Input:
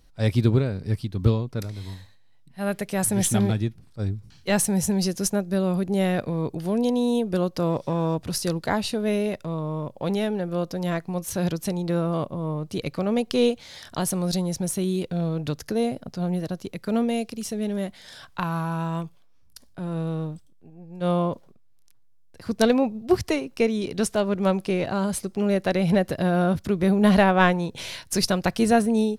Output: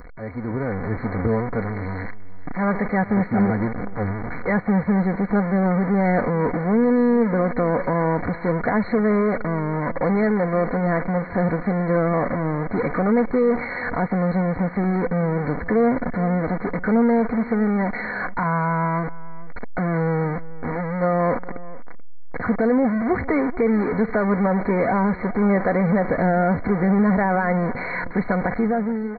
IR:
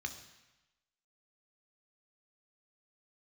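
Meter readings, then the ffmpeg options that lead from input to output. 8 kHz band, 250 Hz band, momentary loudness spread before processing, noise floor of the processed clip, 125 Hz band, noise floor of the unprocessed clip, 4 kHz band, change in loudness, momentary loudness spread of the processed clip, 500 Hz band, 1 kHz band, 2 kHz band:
below −40 dB, +4.0 dB, 10 LU, −31 dBFS, +2.0 dB, −53 dBFS, below −20 dB, +3.0 dB, 8 LU, +3.5 dB, +5.5 dB, +5.5 dB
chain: -filter_complex "[0:a]aeval=exprs='val(0)+0.5*0.0944*sgn(val(0))':channel_layout=same,lowshelf=frequency=210:gain=-6.5,aecho=1:1:4.1:0.43,alimiter=limit=-14dB:level=0:latency=1:release=32,dynaudnorm=framelen=110:gausssize=11:maxgain=14dB,asplit=2[link_01][link_02];[link_02]aecho=0:1:434:0.112[link_03];[link_01][link_03]amix=inputs=2:normalize=0,aresample=8000,aresample=44100,asuperstop=centerf=3100:order=20:qfactor=1.6,volume=-9dB"

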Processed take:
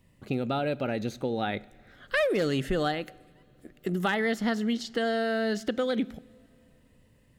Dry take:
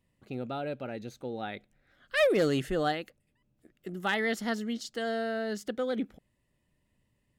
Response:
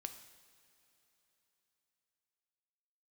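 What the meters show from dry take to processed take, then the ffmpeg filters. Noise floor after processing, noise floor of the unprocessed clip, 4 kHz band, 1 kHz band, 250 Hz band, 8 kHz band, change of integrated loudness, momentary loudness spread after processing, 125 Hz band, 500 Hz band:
−62 dBFS, −76 dBFS, +2.5 dB, +3.0 dB, +4.5 dB, 0.0 dB, +2.5 dB, 8 LU, +5.0 dB, +2.0 dB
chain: -filter_complex "[0:a]acrossover=split=1800|4500[link_01][link_02][link_03];[link_01]acompressor=threshold=-37dB:ratio=4[link_04];[link_02]acompressor=threshold=-48dB:ratio=4[link_05];[link_03]acompressor=threshold=-60dB:ratio=4[link_06];[link_04][link_05][link_06]amix=inputs=3:normalize=0,asplit=2[link_07][link_08];[1:a]atrim=start_sample=2205,lowshelf=frequency=340:gain=9[link_09];[link_08][link_09]afir=irnorm=-1:irlink=0,volume=-7.5dB[link_10];[link_07][link_10]amix=inputs=2:normalize=0,volume=8dB"

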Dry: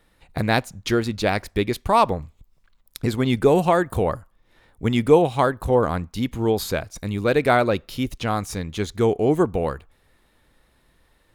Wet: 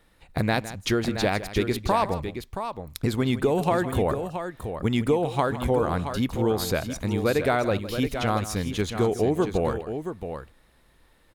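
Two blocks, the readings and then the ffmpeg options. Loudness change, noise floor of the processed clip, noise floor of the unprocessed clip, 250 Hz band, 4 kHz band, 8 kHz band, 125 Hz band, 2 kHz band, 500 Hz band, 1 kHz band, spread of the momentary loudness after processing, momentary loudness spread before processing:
−4.0 dB, −60 dBFS, −63 dBFS, −2.5 dB, −1.5 dB, 0.0 dB, −2.0 dB, −3.5 dB, −4.0 dB, −4.5 dB, 10 LU, 11 LU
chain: -af "acompressor=threshold=-19dB:ratio=6,aecho=1:1:160|674:0.188|0.376"

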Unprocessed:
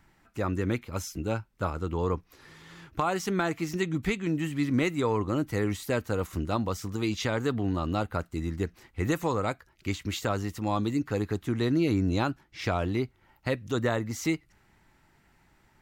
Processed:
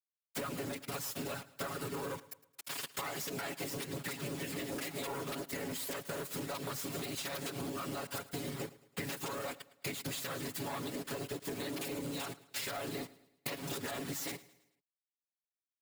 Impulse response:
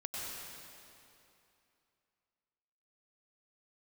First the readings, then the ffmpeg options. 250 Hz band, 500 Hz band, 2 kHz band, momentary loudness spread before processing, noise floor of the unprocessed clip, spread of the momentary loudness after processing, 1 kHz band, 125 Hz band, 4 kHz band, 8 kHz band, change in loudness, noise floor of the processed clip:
−13.5 dB, −11.0 dB, −7.5 dB, 8 LU, −65 dBFS, 4 LU, −10.0 dB, −15.0 dB, −2.5 dB, +0.5 dB, −10.0 dB, below −85 dBFS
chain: -filter_complex "[0:a]acrusher=bits=4:dc=4:mix=0:aa=0.000001,afftfilt=real='hypot(re,im)*cos(2*PI*random(0))':imag='hypot(re,im)*sin(2*PI*random(1))':win_size=512:overlap=0.75,highshelf=frequency=3000:gain=7,aecho=1:1:7.2:0.99,acrossover=split=410|1000[link_01][link_02][link_03];[link_01]asoftclip=type=tanh:threshold=-31.5dB[link_04];[link_04][link_02][link_03]amix=inputs=3:normalize=0,highpass=150,alimiter=level_in=6.5dB:limit=-24dB:level=0:latency=1:release=170,volume=-6.5dB,equalizer=frequency=6000:width=7.3:gain=-5,asoftclip=type=hard:threshold=-35.5dB,acompressor=threshold=-53dB:ratio=12,asplit=2[link_05][link_06];[link_06]aecho=0:1:109|218|327|436:0.112|0.0505|0.0227|0.0102[link_07];[link_05][link_07]amix=inputs=2:normalize=0,volume=16dB"

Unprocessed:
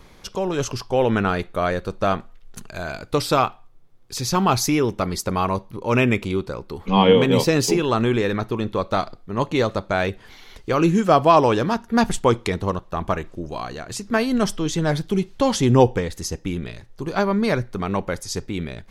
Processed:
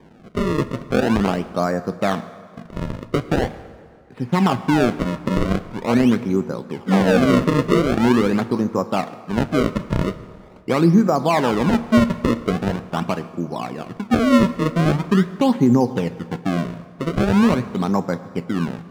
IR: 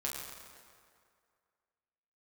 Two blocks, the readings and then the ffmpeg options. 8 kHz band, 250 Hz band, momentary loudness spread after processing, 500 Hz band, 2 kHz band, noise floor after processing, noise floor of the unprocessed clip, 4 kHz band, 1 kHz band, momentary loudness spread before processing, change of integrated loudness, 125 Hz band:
−8.5 dB, +5.0 dB, 12 LU, −1.0 dB, 0.0 dB, −44 dBFS, −48 dBFS, −3.5 dB, −2.0 dB, 15 LU, +1.5 dB, +2.0 dB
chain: -filter_complex "[0:a]highpass=frequency=120:width=0.5412,highpass=frequency=120:width=1.3066,equalizer=frequency=170:width_type=q:width=4:gain=6,equalizer=frequency=250:width_type=q:width=4:gain=8,equalizer=frequency=820:width_type=q:width=4:gain=4,lowpass=frequency=2200:width=0.5412,lowpass=frequency=2200:width=1.3066,alimiter=limit=-7.5dB:level=0:latency=1:release=222,acrusher=samples=32:mix=1:aa=0.000001:lfo=1:lforange=51.2:lforate=0.43,aemphasis=mode=reproduction:type=75kf,asplit=2[link_01][link_02];[1:a]atrim=start_sample=2205[link_03];[link_02][link_03]afir=irnorm=-1:irlink=0,volume=-12dB[link_04];[link_01][link_04]amix=inputs=2:normalize=0"

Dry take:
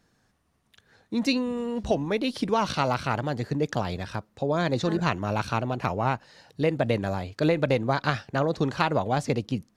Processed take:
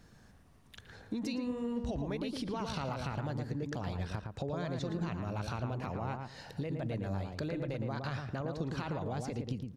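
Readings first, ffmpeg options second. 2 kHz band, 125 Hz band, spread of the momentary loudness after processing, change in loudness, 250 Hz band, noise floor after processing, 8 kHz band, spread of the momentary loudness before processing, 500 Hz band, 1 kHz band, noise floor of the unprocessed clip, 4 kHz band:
−14.0 dB, −7.0 dB, 4 LU, −10.5 dB, −9.0 dB, −60 dBFS, −10.0 dB, 6 LU, −13.0 dB, −14.0 dB, −68 dBFS, −12.0 dB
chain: -filter_complex "[0:a]lowshelf=frequency=130:gain=9.5,alimiter=limit=-19dB:level=0:latency=1:release=63,acompressor=threshold=-42dB:ratio=4,asplit=2[link_01][link_02];[link_02]adelay=113,lowpass=frequency=1500:poles=1,volume=-3.5dB,asplit=2[link_03][link_04];[link_04]adelay=113,lowpass=frequency=1500:poles=1,volume=0.23,asplit=2[link_05][link_06];[link_06]adelay=113,lowpass=frequency=1500:poles=1,volume=0.23[link_07];[link_03][link_05][link_07]amix=inputs=3:normalize=0[link_08];[link_01][link_08]amix=inputs=2:normalize=0,volume=4dB"

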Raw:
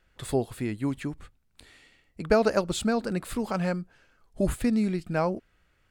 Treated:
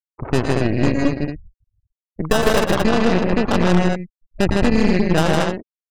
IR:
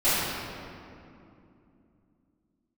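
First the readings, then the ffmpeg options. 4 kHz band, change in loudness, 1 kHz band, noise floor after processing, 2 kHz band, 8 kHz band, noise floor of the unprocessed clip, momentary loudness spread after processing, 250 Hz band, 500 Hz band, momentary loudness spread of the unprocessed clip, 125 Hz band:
+13.0 dB, +9.5 dB, +10.5 dB, below −85 dBFS, +12.5 dB, +7.0 dB, −68 dBFS, 11 LU, +10.0 dB, +8.5 dB, 13 LU, +12.0 dB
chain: -af "acrusher=samples=20:mix=1:aa=0.000001,acompressor=threshold=-26dB:ratio=4,afftfilt=real='re*gte(hypot(re,im),0.02)':imag='im*gte(hypot(re,im),0.02)':win_size=1024:overlap=0.75,aecho=1:1:106|117|157|228:0.299|0.335|0.708|0.531,aeval=exprs='0.178*(cos(1*acos(clip(val(0)/0.178,-1,1)))-cos(1*PI/2))+0.0398*(cos(4*acos(clip(val(0)/0.178,-1,1)))-cos(4*PI/2))+0.0355*(cos(5*acos(clip(val(0)/0.178,-1,1)))-cos(5*PI/2))+0.02*(cos(7*acos(clip(val(0)/0.178,-1,1)))-cos(7*PI/2))+0.0224*(cos(8*acos(clip(val(0)/0.178,-1,1)))-cos(8*PI/2))':channel_layout=same,volume=7.5dB"

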